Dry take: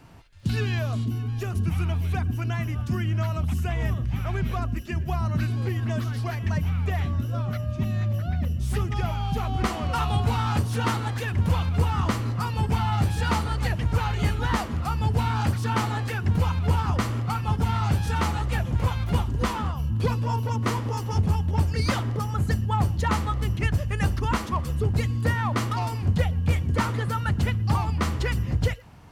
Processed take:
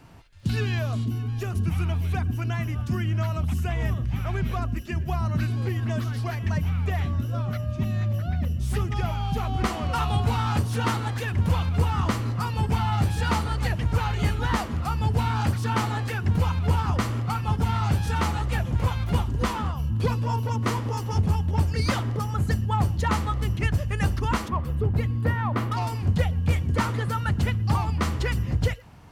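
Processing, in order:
0:24.48–0:25.72: parametric band 6,900 Hz −13.5 dB 1.9 octaves

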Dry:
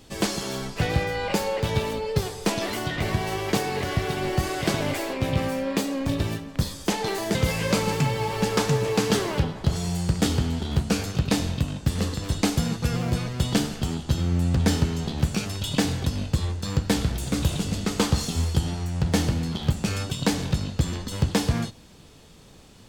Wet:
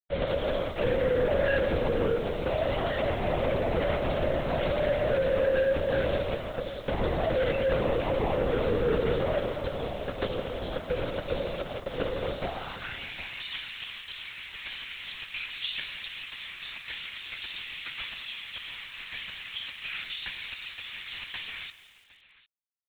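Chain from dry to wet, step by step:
high-pass filter 77 Hz 12 dB per octave
parametric band 540 Hz +8.5 dB 0.49 octaves
in parallel at +0.5 dB: brickwall limiter −14.5 dBFS, peak gain reduction 8.5 dB
on the sum: downward compressor 3 to 1, threshold −19 dBFS, peak gain reduction 7 dB
bit reduction 5 bits
high-pass filter sweep 490 Hz → 2,300 Hz, 0:12.37–0:13.02
gain into a clipping stage and back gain 15 dB
on a send: single-tap delay 753 ms −20 dB
on the sum: linear-prediction vocoder at 8 kHz whisper
feedback echo at a low word length 170 ms, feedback 55%, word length 7 bits, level −14 dB
level −8 dB

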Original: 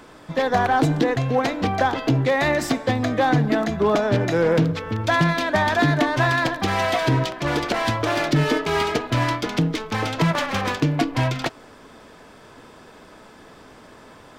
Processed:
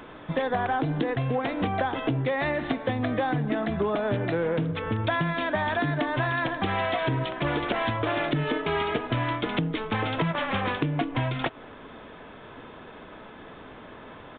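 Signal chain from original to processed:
downsampling to 8,000 Hz
downward compressor 6 to 1, threshold −25 dBFS, peak gain reduction 11 dB
level +1.5 dB

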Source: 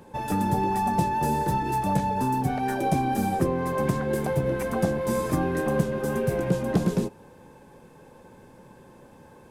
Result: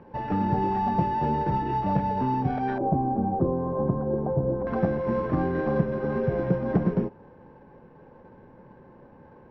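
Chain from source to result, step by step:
samples sorted by size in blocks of 8 samples
low-pass filter 2,300 Hz 24 dB per octave, from 0:02.78 1,000 Hz, from 0:04.67 2,100 Hz

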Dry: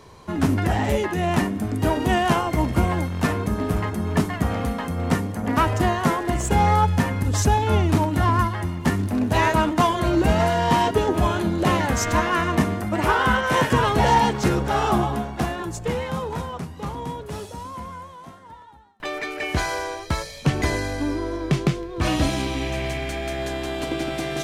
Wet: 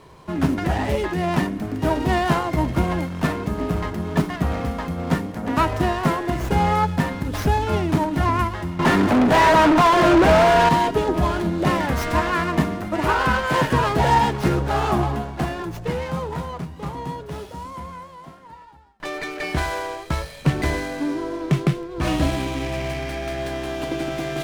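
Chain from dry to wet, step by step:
mains-hum notches 50/100 Hz
0:08.79–0:10.69: mid-hump overdrive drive 31 dB, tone 1,600 Hz, clips at −7.5 dBFS
on a send at −16.5 dB: convolution reverb RT60 0.10 s, pre-delay 3 ms
on the sum: windowed peak hold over 5 samples

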